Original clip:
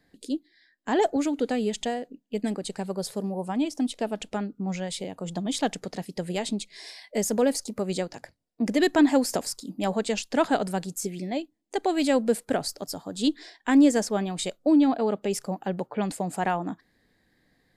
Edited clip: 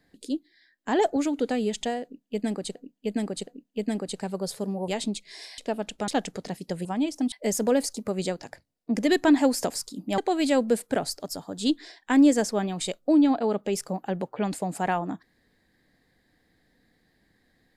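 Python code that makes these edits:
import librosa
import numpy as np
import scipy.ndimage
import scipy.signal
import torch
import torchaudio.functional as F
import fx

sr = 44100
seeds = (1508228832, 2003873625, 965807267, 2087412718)

y = fx.edit(x, sr, fx.repeat(start_s=2.03, length_s=0.72, count=3),
    fx.swap(start_s=3.44, length_s=0.47, other_s=6.33, other_length_s=0.7),
    fx.cut(start_s=4.41, length_s=1.15),
    fx.cut(start_s=9.89, length_s=1.87), tone=tone)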